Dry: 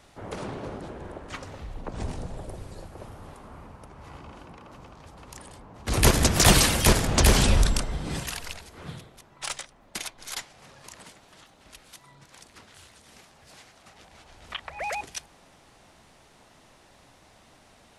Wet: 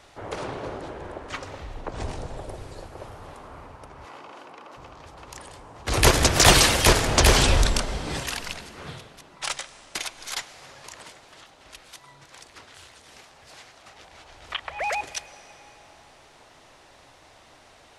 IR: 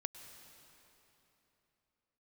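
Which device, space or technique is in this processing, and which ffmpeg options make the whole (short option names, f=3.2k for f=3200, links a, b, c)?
filtered reverb send: -filter_complex "[0:a]asettb=1/sr,asplit=3[a][b][c];[a]atrim=end=4.054[d];[b]atrim=start=4.05:end=4.77,asetpts=PTS-STARTPTS,afade=t=in:d=0.004:c=qsin,afade=t=out:st=0.716:d=0.004:c=qsin,highpass=280[e];[c]atrim=start=4.766[f];[d][e]acrossfade=d=0.004:c1=hsin:c2=qsin[g];[g][f]acrossfade=d=0.004:c1=qsin:c2=hsin,asplit=2[h][i];[i]highpass=f=190:w=0.5412,highpass=f=190:w=1.3066,lowpass=8.4k[j];[1:a]atrim=start_sample=2205[k];[j][k]afir=irnorm=-1:irlink=0,volume=-0.5dB[l];[h][l]amix=inputs=2:normalize=0"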